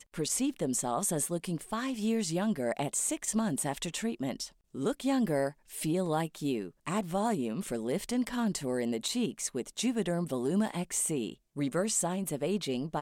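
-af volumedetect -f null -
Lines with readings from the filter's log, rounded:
mean_volume: -32.2 dB
max_volume: -17.8 dB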